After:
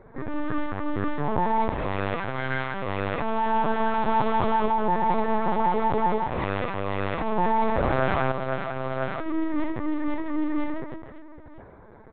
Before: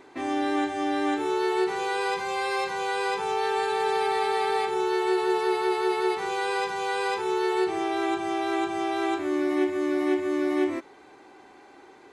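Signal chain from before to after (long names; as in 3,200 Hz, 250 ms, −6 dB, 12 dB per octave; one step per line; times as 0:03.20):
adaptive Wiener filter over 15 samples
comb filter 4.4 ms, depth 90%
reverse bouncing-ball delay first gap 60 ms, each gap 1.6×, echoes 5
linear-prediction vocoder at 8 kHz pitch kept
0:07.38–0:08.32: envelope flattener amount 70%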